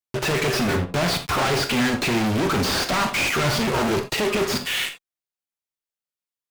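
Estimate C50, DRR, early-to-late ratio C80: 9.5 dB, 6.0 dB, 14.5 dB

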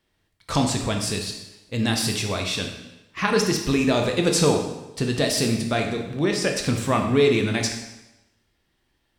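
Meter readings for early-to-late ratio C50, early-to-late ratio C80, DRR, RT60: 5.5 dB, 8.0 dB, 2.5 dB, 1.0 s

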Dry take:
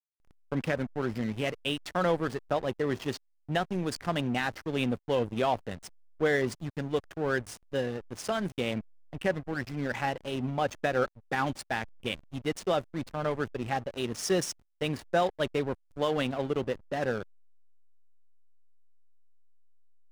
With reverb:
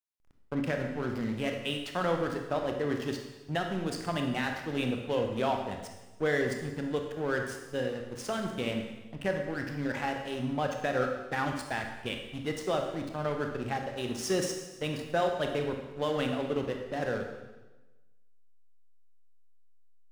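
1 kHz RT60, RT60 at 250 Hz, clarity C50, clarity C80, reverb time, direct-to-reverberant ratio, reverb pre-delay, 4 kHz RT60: 1.1 s, 1.3 s, 5.0 dB, 7.0 dB, 1.1 s, 3.0 dB, 23 ms, 1.1 s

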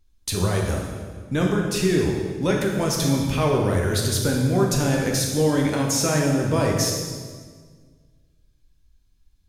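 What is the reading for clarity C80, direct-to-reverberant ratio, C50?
4.0 dB, −1.0 dB, 2.5 dB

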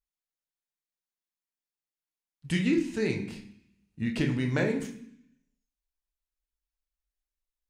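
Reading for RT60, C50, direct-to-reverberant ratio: 0.65 s, 9.5 dB, 2.0 dB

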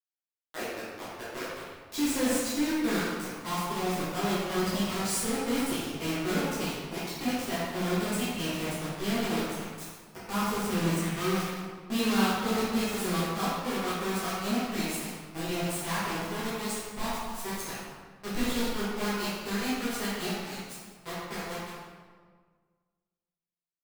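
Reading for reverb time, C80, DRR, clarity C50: 1.7 s, 0.0 dB, −11.5 dB, −2.5 dB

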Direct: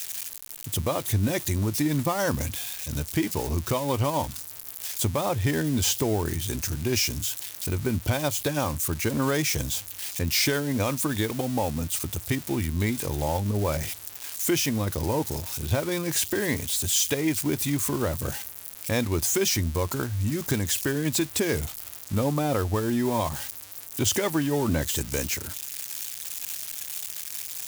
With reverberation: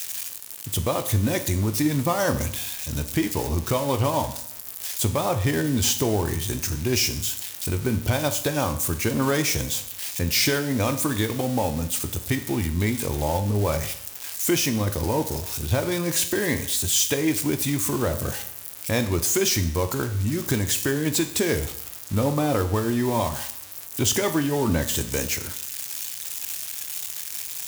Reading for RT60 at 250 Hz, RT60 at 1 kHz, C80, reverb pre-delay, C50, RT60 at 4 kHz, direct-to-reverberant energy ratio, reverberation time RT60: 0.70 s, 0.70 s, 14.5 dB, 17 ms, 12.5 dB, 0.65 s, 8.0 dB, 0.70 s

